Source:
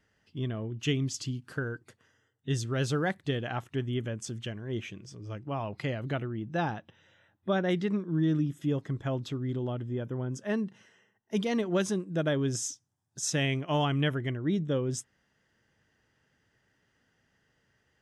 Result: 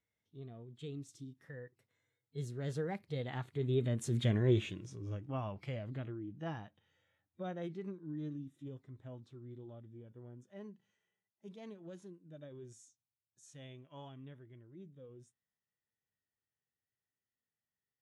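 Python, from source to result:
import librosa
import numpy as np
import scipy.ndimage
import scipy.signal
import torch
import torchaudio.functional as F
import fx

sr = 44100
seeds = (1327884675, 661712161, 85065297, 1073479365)

y = fx.doppler_pass(x, sr, speed_mps=17, closest_m=3.8, pass_at_s=4.35)
y = fx.formant_shift(y, sr, semitones=2)
y = fx.hpss(y, sr, part='percussive', gain_db=-10)
y = y * librosa.db_to_amplitude(10.0)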